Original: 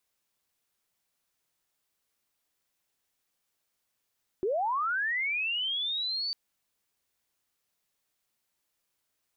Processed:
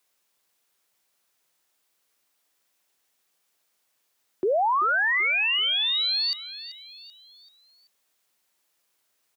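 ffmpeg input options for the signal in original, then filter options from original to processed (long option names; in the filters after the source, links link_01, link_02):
-f lavfi -i "aevalsrc='pow(10,(-25.5-4*t/1.9)/20)*sin(2*PI*(350*t+4250*t*t/(2*1.9)))':duration=1.9:sample_rate=44100"
-filter_complex "[0:a]highpass=82,acrossover=split=280[link_01][link_02];[link_02]acontrast=79[link_03];[link_01][link_03]amix=inputs=2:normalize=0,aecho=1:1:385|770|1155|1540:0.188|0.0848|0.0381|0.0172"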